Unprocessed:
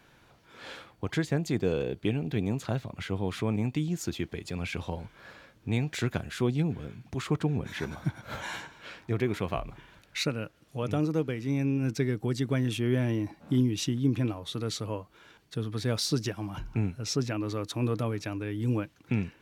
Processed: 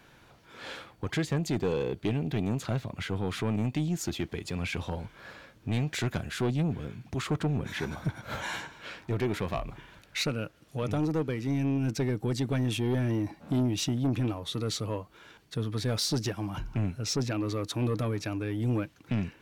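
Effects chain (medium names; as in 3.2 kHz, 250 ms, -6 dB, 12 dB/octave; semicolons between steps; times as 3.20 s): saturation -24.5 dBFS, distortion -12 dB; trim +2.5 dB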